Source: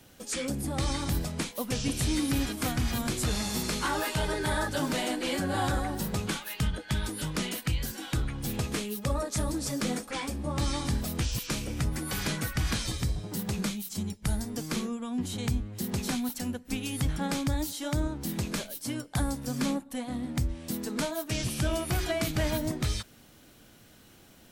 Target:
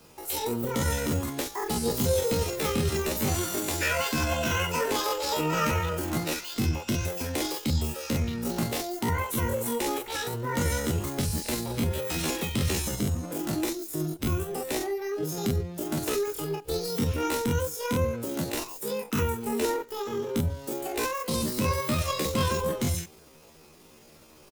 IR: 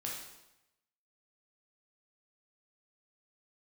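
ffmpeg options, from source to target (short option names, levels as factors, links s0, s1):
-filter_complex "[0:a]aecho=1:1:22|42:0.531|0.668,asplit=2[s0][s1];[1:a]atrim=start_sample=2205[s2];[s1][s2]afir=irnorm=-1:irlink=0,volume=0.0794[s3];[s0][s3]amix=inputs=2:normalize=0,asetrate=74167,aresample=44100,atempo=0.594604"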